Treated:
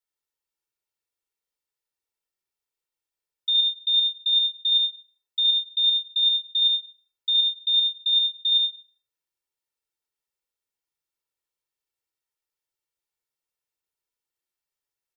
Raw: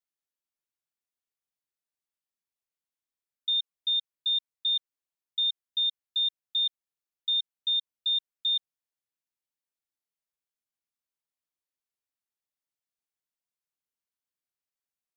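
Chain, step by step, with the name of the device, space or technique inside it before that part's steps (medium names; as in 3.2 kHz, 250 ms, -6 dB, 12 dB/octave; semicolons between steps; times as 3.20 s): microphone above a desk (comb 2.2 ms, depth 55%; reverberation RT60 0.60 s, pre-delay 59 ms, DRR 1 dB)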